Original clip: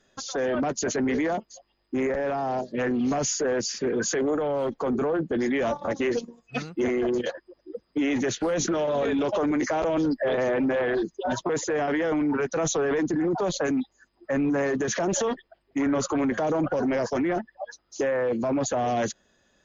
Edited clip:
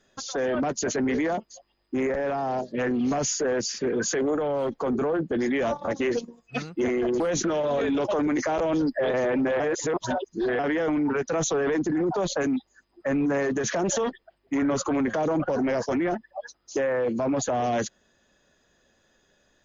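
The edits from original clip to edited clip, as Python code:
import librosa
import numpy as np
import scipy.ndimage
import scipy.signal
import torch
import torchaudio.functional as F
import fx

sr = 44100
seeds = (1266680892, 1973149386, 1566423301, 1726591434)

y = fx.edit(x, sr, fx.cut(start_s=7.2, length_s=1.24),
    fx.reverse_span(start_s=10.84, length_s=0.99), tone=tone)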